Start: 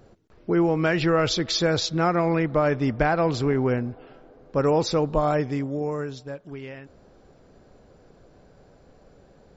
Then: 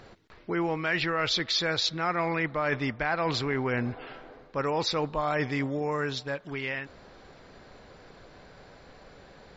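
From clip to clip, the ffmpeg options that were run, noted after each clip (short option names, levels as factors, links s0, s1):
-af "equalizer=f=1000:t=o:w=1:g=6,equalizer=f=2000:t=o:w=1:g=10,equalizer=f=4000:t=o:w=1:g=10,areverse,acompressor=threshold=0.0501:ratio=5,areverse"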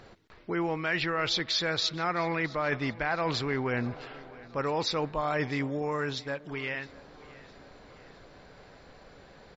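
-af "aecho=1:1:662|1324|1986|2648:0.0891|0.0455|0.0232|0.0118,volume=0.841"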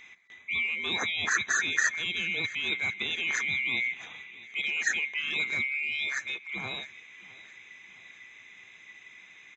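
-af "afftfilt=real='real(if(lt(b,920),b+92*(1-2*mod(floor(b/92),2)),b),0)':imag='imag(if(lt(b,920),b+92*(1-2*mod(floor(b/92),2)),b),0)':win_size=2048:overlap=0.75,highpass=130,equalizer=f=140:t=q:w=4:g=-5,equalizer=f=280:t=q:w=4:g=-4,equalizer=f=570:t=q:w=4:g=-8,equalizer=f=1100:t=q:w=4:g=3,equalizer=f=1800:t=q:w=4:g=10,equalizer=f=2900:t=q:w=4:g=-8,lowpass=f=6500:w=0.5412,lowpass=f=6500:w=1.3066"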